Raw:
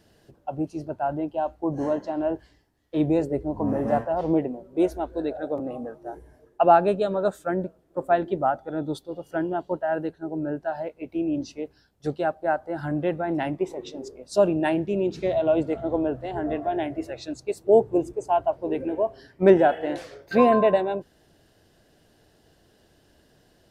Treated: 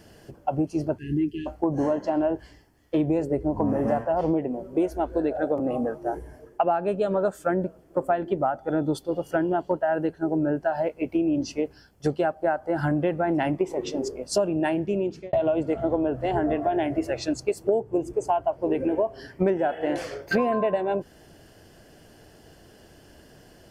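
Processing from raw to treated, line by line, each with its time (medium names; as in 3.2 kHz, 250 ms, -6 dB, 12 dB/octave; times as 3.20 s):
0.98–1.47 s: spectral selection erased 450–1600 Hz
14.54–15.33 s: fade out
whole clip: band-stop 3.8 kHz, Q 5.3; compression 8:1, threshold -29 dBFS; trim +8.5 dB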